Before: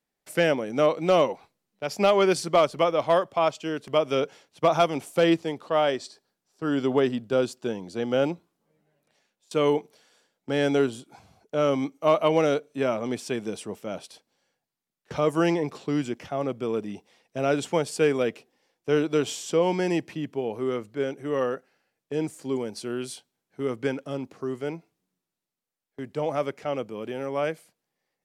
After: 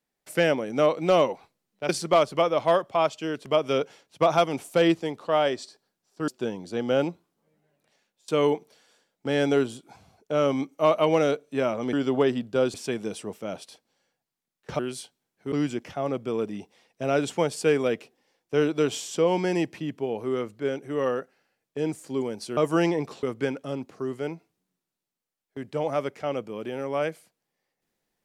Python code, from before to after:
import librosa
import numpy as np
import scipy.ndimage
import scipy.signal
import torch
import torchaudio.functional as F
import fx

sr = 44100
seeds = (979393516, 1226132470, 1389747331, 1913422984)

y = fx.edit(x, sr, fx.cut(start_s=1.89, length_s=0.42),
    fx.move(start_s=6.7, length_s=0.81, to_s=13.16),
    fx.swap(start_s=15.21, length_s=0.66, other_s=22.92, other_length_s=0.73), tone=tone)